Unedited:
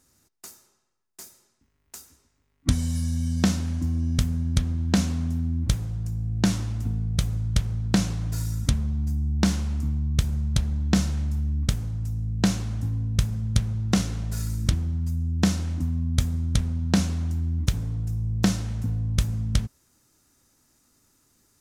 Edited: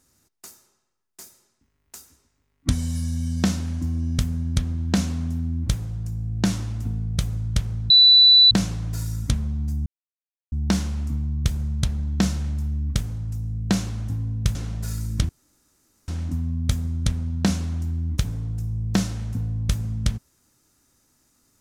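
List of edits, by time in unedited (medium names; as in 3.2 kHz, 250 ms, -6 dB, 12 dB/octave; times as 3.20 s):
7.90 s: add tone 3.97 kHz -9 dBFS 0.61 s
9.25 s: insert silence 0.66 s
13.28–14.04 s: delete
14.78–15.57 s: room tone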